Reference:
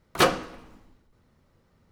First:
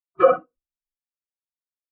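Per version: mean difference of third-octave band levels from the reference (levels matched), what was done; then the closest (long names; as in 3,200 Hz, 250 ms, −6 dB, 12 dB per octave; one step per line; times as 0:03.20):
16.5 dB: dynamic equaliser 2,100 Hz, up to +5 dB, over −36 dBFS, Q 0.84
flutter between parallel walls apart 10.7 metres, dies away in 0.46 s
boost into a limiter +13 dB
every bin expanded away from the loudest bin 4 to 1
level −1 dB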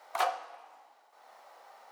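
9.5 dB: harmonic and percussive parts rebalanced harmonic +4 dB
four-pole ladder high-pass 690 Hz, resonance 70%
multiband upward and downward compressor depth 70%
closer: second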